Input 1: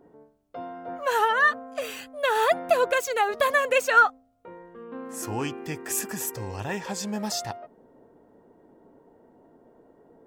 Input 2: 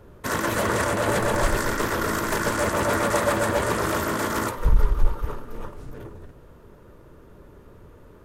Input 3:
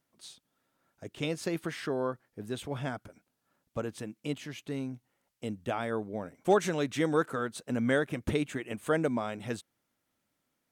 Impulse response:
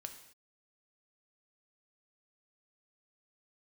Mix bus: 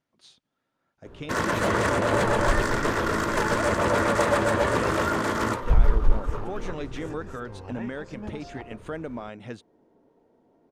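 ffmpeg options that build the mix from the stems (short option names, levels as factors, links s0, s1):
-filter_complex "[0:a]lowpass=f=2200:p=1,adelay=1100,volume=0.473[s0];[1:a]adelay=1050,volume=1[s1];[2:a]bandreject=f=8000:w=12,volume=0.891[s2];[s0][s2]amix=inputs=2:normalize=0,alimiter=limit=0.0631:level=0:latency=1:release=237,volume=1[s3];[s1][s3]amix=inputs=2:normalize=0,adynamicsmooth=sensitivity=2.5:basefreq=6100"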